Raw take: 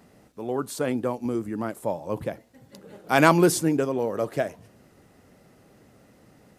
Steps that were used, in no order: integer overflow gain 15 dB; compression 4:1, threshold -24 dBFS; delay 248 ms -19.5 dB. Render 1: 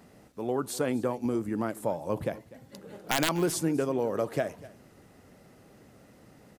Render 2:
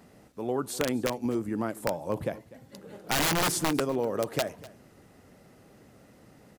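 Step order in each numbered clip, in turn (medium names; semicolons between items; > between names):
compression > integer overflow > delay; integer overflow > compression > delay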